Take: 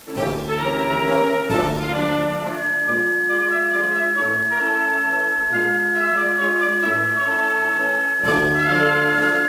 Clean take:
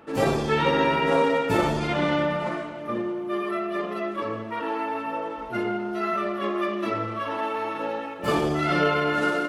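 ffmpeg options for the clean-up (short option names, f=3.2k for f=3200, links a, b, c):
-af "adeclick=t=4,bandreject=f=1.7k:w=30,afwtdn=0.0063,asetnsamples=n=441:p=0,asendcmd='0.9 volume volume -3dB',volume=0dB"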